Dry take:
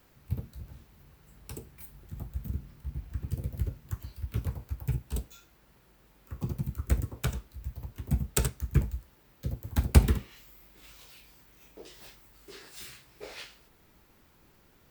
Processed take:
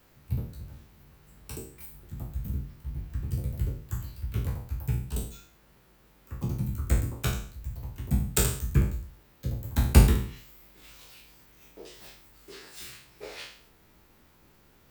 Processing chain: spectral sustain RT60 0.52 s

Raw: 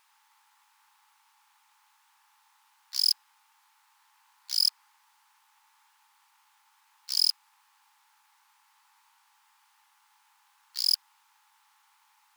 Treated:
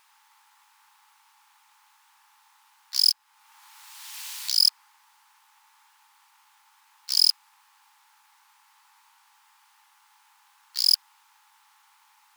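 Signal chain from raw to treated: 3.10–4.53 s: three bands compressed up and down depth 100%; trim +5 dB

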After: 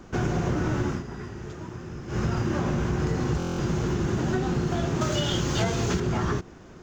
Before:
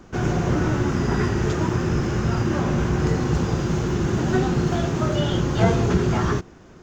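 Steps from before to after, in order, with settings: 0.86–2.24 s: dip -15.5 dB, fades 0.17 s; 5.01–6.00 s: treble shelf 2.3 kHz +11.5 dB; compression, threshold -22 dBFS, peak gain reduction 10.5 dB; buffer glitch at 3.38 s, samples 1024, times 8

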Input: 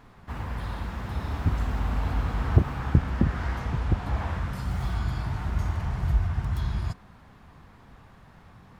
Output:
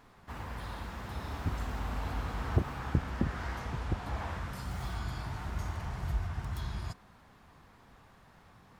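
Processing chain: tone controls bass -5 dB, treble +4 dB; trim -4.5 dB

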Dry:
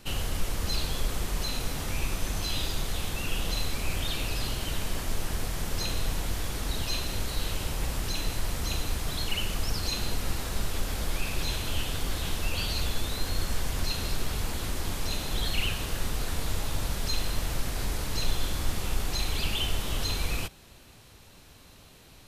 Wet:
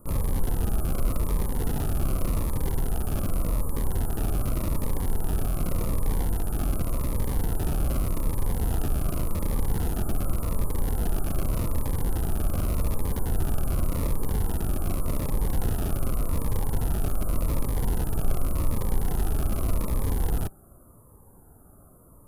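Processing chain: Chebyshev band-stop 1.3–9.7 kHz, order 4; high-order bell 5.4 kHz +11 dB 1.1 oct; in parallel at -4 dB: Schmitt trigger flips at -35 dBFS; on the sum: Shepard-style phaser falling 0.86 Hz; trim +3 dB

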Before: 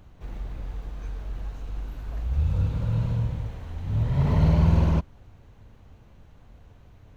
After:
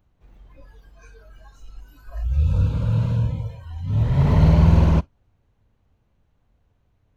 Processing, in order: spectral noise reduction 19 dB; trim +5 dB

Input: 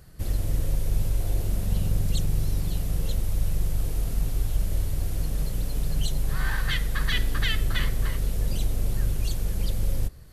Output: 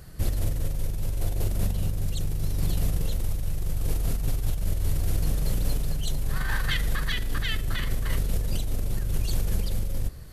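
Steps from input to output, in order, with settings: compressor with a negative ratio -26 dBFS, ratio -1; trim +2 dB

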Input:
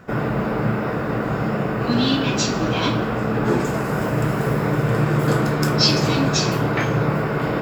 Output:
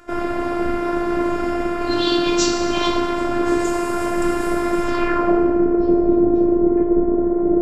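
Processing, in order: low-pass sweep 9.5 kHz -> 420 Hz, 4.81–5.39 s; FDN reverb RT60 2.2 s, low-frequency decay 0.7×, high-frequency decay 0.7×, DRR 3 dB; robot voice 347 Hz; trim +1.5 dB

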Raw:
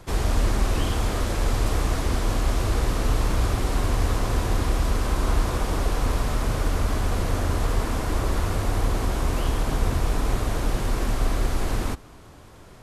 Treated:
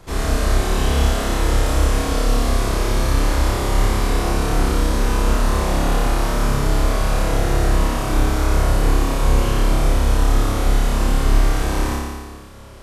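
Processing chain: hum notches 50/100 Hz; on a send: flutter echo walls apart 5 m, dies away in 1.5 s

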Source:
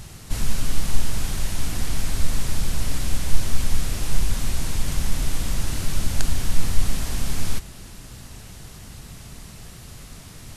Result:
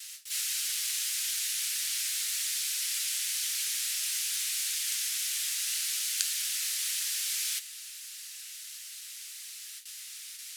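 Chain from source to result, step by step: harmony voices +12 st -12 dB; gate with hold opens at -31 dBFS; flange 1.7 Hz, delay 3.8 ms, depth 8.3 ms, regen +63%; Bessel high-pass 2.9 kHz, order 6; trim +9 dB

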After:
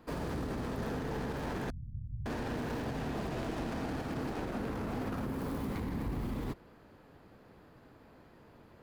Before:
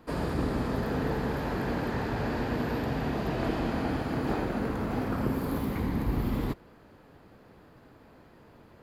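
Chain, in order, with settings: tracing distortion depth 0.19 ms; 1.70–2.26 s: inverse Chebyshev low-pass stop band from 540 Hz, stop band 70 dB; peak limiter -25.5 dBFS, peak gain reduction 9 dB; trim -3 dB

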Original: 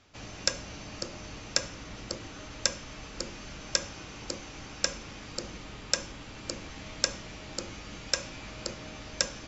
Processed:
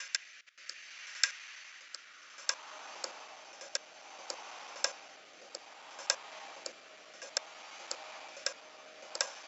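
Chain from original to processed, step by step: slices played last to first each 82 ms, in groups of 7; high-pass sweep 1.8 kHz -> 770 Hz, 1.71–2.92 s; rotary cabinet horn 0.6 Hz; trim -3 dB

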